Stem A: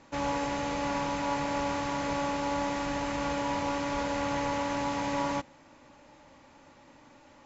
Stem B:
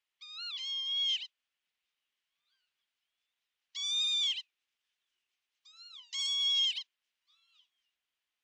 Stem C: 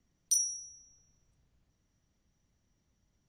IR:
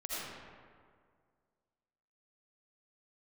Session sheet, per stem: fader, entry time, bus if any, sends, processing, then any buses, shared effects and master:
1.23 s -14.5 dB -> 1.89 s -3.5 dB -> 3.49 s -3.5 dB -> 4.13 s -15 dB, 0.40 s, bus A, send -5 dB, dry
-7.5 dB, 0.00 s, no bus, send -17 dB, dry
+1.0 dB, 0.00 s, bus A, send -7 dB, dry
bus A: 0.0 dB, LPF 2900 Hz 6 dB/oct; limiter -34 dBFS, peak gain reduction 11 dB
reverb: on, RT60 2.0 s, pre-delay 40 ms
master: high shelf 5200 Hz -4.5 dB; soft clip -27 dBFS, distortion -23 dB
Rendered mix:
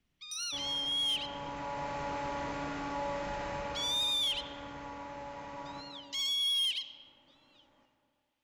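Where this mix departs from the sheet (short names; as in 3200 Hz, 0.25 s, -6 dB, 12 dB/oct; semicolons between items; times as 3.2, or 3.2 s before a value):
stem B -7.5 dB -> +3.0 dB; stem C +1.0 dB -> -6.0 dB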